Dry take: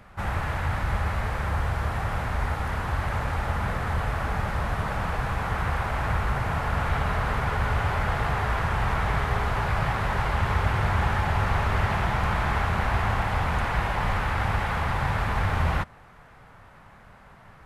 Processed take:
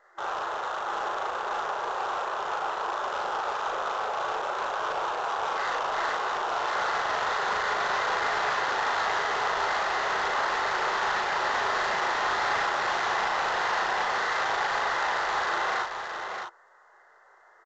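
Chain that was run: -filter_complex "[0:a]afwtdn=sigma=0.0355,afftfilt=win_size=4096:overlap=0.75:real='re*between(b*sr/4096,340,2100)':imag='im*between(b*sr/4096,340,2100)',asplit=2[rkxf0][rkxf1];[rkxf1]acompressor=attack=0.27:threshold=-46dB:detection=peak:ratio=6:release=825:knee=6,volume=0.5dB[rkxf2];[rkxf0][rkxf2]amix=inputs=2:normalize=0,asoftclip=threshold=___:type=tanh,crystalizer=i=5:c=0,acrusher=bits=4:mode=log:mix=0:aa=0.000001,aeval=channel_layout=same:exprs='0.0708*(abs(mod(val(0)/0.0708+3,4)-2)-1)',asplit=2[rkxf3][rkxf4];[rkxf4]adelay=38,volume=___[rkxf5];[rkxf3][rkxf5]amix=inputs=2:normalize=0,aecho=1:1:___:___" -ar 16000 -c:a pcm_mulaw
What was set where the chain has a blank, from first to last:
-28dB, -2.5dB, 622, 0.501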